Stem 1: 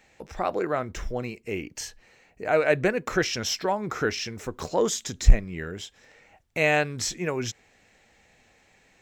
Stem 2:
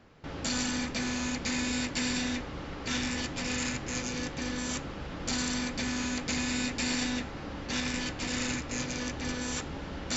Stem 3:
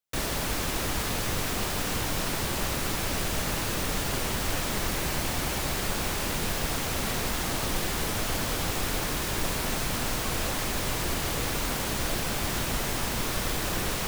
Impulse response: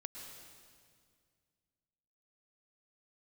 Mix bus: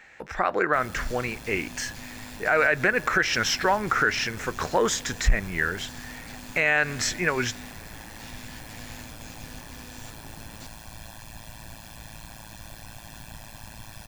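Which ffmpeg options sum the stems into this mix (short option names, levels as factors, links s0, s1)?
-filter_complex "[0:a]equalizer=f=1600:t=o:w=1.3:g=14,volume=1,asplit=2[s0][s1];[s1]volume=0.0891[s2];[1:a]asoftclip=type=tanh:threshold=0.0224,adelay=500,volume=0.376[s3];[2:a]tremolo=f=110:d=0.974,aecho=1:1:1.2:0.76,adelay=600,volume=0.237[s4];[3:a]atrim=start_sample=2205[s5];[s2][s5]afir=irnorm=-1:irlink=0[s6];[s0][s3][s4][s6]amix=inputs=4:normalize=0,alimiter=limit=0.299:level=0:latency=1:release=105"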